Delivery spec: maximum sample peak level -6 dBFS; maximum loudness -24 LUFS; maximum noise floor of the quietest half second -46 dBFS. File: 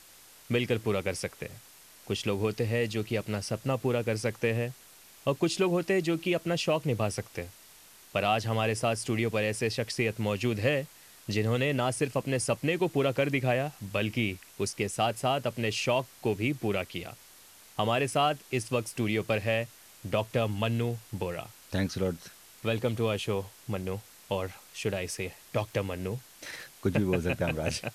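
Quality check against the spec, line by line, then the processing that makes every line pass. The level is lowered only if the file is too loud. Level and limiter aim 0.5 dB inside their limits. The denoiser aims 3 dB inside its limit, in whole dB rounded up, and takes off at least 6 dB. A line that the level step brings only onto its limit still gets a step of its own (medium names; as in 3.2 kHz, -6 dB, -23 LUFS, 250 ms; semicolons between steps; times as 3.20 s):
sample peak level -13.0 dBFS: pass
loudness -30.5 LUFS: pass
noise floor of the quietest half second -54 dBFS: pass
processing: none needed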